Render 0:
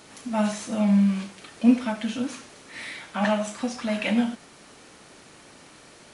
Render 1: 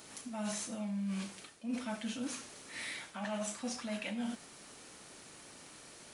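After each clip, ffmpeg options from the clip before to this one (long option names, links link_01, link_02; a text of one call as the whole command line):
ffmpeg -i in.wav -af "highshelf=frequency=6000:gain=10,areverse,acompressor=threshold=-28dB:ratio=20,areverse,volume=-6.5dB" out.wav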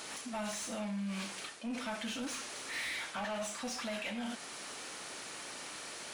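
ffmpeg -i in.wav -filter_complex "[0:a]alimiter=level_in=9.5dB:limit=-24dB:level=0:latency=1:release=243,volume=-9.5dB,asplit=2[link_01][link_02];[link_02]highpass=frequency=720:poles=1,volume=16dB,asoftclip=type=tanh:threshold=-33dB[link_03];[link_01][link_03]amix=inputs=2:normalize=0,lowpass=frequency=5500:poles=1,volume=-6dB,volume=2dB" out.wav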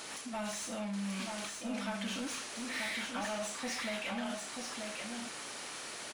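ffmpeg -i in.wav -af "aecho=1:1:934:0.596" out.wav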